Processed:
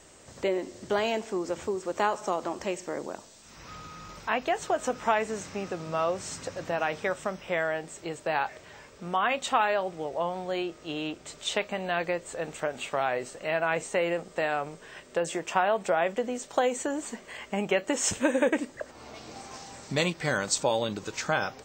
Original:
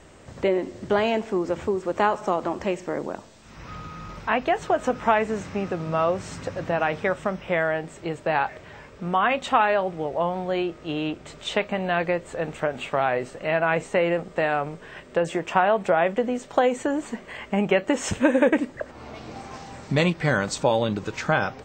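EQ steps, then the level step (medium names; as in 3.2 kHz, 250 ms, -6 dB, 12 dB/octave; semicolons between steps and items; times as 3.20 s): tone controls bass -5 dB, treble +11 dB; -5.0 dB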